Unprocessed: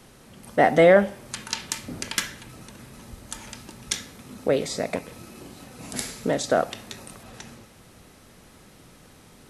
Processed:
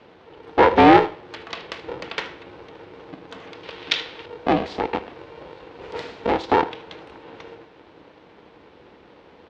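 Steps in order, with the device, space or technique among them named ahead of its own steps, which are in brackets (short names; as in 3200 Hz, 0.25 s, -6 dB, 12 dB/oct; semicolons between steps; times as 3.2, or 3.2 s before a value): ring modulator pedal into a guitar cabinet (polarity switched at an audio rate 230 Hz; speaker cabinet 78–3700 Hz, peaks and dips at 120 Hz -5 dB, 310 Hz +5 dB, 480 Hz +7 dB, 890 Hz +5 dB); 3.63–4.26 bell 3400 Hz +13.5 dB 2.3 oct; echo 77 ms -18 dB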